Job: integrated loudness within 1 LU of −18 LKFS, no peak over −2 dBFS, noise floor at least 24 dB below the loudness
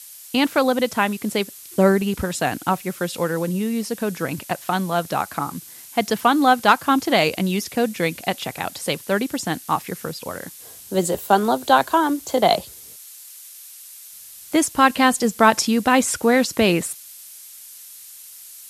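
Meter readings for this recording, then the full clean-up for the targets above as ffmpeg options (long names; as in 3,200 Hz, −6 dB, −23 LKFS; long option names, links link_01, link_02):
background noise floor −42 dBFS; target noise floor −45 dBFS; integrated loudness −20.5 LKFS; sample peak −2.0 dBFS; target loudness −18.0 LKFS
→ -af "afftdn=noise_reduction=6:noise_floor=-42"
-af "volume=2.5dB,alimiter=limit=-2dB:level=0:latency=1"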